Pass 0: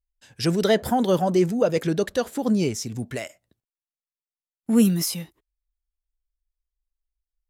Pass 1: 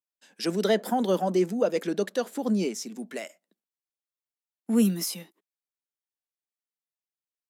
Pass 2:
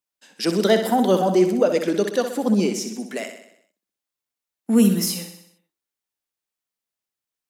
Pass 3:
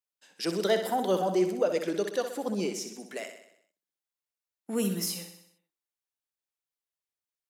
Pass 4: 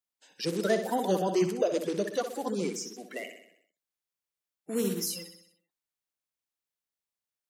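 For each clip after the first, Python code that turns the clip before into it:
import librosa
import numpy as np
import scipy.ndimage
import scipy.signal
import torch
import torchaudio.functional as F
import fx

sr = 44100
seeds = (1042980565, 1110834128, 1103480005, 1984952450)

y1 = scipy.signal.sosfilt(scipy.signal.ellip(4, 1.0, 40, 190.0, 'highpass', fs=sr, output='sos'), x)
y1 = F.gain(torch.from_numpy(y1), -3.5).numpy()
y2 = fx.echo_feedback(y1, sr, ms=63, feedback_pct=56, wet_db=-8.5)
y2 = F.gain(torch.from_numpy(y2), 6.0).numpy()
y3 = fx.peak_eq(y2, sr, hz=230.0, db=-9.5, octaves=0.45)
y3 = F.gain(torch.from_numpy(y3), -7.5).numpy()
y4 = fx.spec_quant(y3, sr, step_db=30)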